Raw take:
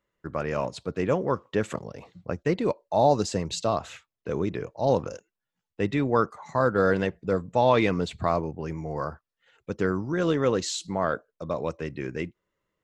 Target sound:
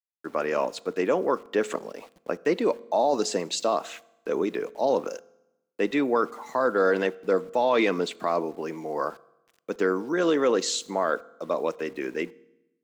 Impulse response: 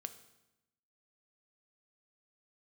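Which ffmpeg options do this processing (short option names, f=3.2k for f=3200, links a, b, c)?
-filter_complex "[0:a]highpass=f=250:w=0.5412,highpass=f=250:w=1.3066,alimiter=limit=-16.5dB:level=0:latency=1:release=10,aeval=exprs='val(0)*gte(abs(val(0)),0.00224)':c=same,asplit=2[a][b];[1:a]atrim=start_sample=2205[c];[b][c]afir=irnorm=-1:irlink=0,volume=-3.5dB[d];[a][d]amix=inputs=2:normalize=0"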